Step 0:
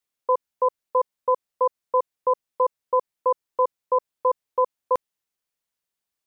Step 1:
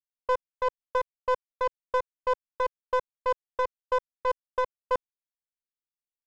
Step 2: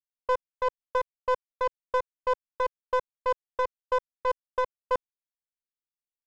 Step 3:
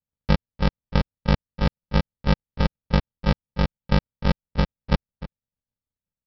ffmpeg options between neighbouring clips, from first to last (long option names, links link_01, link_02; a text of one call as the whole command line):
ffmpeg -i in.wav -af "aeval=exprs='0.266*(cos(1*acos(clip(val(0)/0.266,-1,1)))-cos(1*PI/2))+0.0596*(cos(2*acos(clip(val(0)/0.266,-1,1)))-cos(2*PI/2))':channel_layout=same,adynamicsmooth=sensitivity=2:basefreq=750,anlmdn=39.8,volume=-5.5dB" out.wav
ffmpeg -i in.wav -af anull out.wav
ffmpeg -i in.wav -filter_complex "[0:a]aresample=11025,acrusher=samples=31:mix=1:aa=0.000001,aresample=44100,asplit=2[link_01][link_02];[link_02]adelay=303.2,volume=-15dB,highshelf=frequency=4000:gain=-6.82[link_03];[link_01][link_03]amix=inputs=2:normalize=0,volume=7dB" out.wav